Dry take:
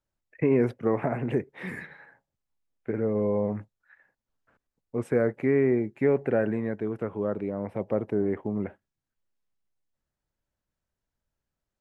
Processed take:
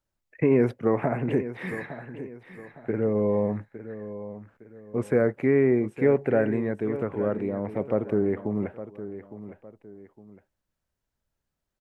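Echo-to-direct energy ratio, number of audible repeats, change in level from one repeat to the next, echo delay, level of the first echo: −12.5 dB, 2, −9.0 dB, 860 ms, −13.0 dB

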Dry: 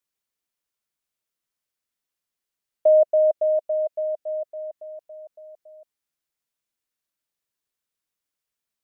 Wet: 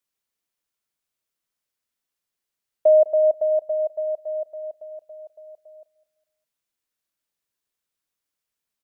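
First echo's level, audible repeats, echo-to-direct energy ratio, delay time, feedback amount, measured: −20.0 dB, 2, −19.5 dB, 204 ms, 38%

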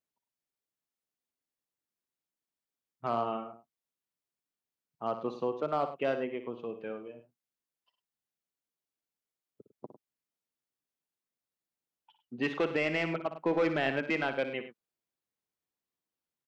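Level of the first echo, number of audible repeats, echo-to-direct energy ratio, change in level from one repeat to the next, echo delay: −11.0 dB, 2, −9.0 dB, repeats not evenly spaced, 59 ms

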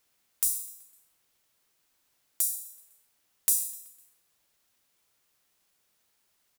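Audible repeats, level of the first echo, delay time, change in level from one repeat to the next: 3, −20.0 dB, 126 ms, −5.5 dB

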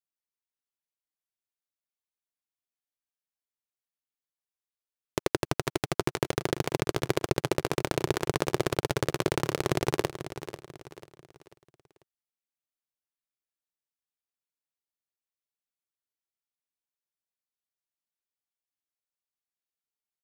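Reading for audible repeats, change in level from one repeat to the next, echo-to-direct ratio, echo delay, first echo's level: 3, −8.0 dB, −11.5 dB, 492 ms, −12.0 dB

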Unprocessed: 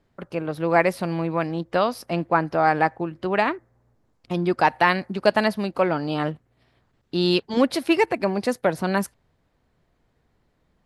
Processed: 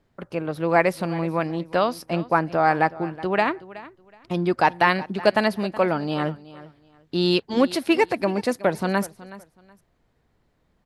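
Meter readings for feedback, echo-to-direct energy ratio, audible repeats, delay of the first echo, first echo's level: 23%, −18.0 dB, 2, 372 ms, −18.0 dB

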